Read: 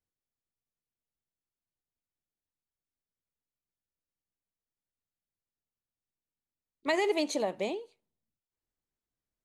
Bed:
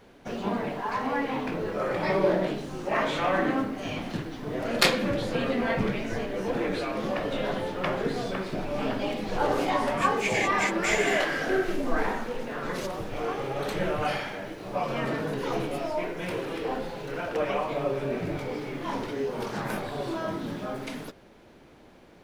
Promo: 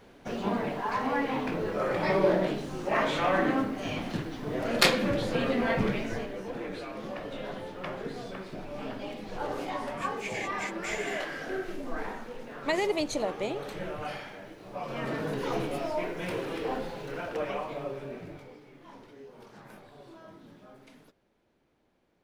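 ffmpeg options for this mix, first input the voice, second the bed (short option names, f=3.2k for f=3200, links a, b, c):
-filter_complex "[0:a]adelay=5800,volume=0dB[a];[1:a]volume=6.5dB,afade=t=out:st=5.97:d=0.47:silence=0.398107,afade=t=in:st=14.78:d=0.52:silence=0.446684,afade=t=out:st=16.76:d=1.84:silence=0.141254[b];[a][b]amix=inputs=2:normalize=0"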